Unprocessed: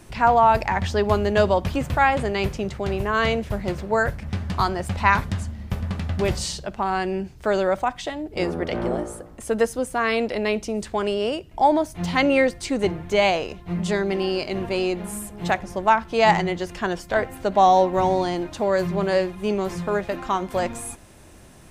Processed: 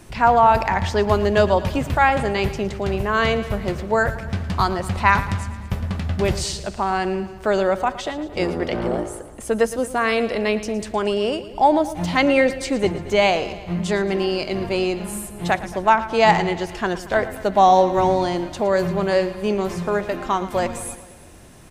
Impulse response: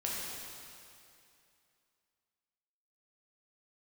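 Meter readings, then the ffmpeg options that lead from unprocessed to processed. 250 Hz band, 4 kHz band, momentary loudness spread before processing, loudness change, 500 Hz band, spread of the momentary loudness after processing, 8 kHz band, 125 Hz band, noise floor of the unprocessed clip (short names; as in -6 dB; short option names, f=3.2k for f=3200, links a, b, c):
+2.0 dB, +2.0 dB, 10 LU, +2.0 dB, +2.0 dB, 10 LU, +2.0 dB, +2.0 dB, -45 dBFS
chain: -af "aecho=1:1:113|226|339|452|565|678:0.178|0.107|0.064|0.0384|0.023|0.0138,volume=2dB"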